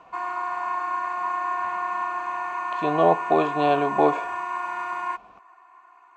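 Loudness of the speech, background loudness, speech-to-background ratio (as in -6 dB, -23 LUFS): -22.5 LUFS, -28.5 LUFS, 6.0 dB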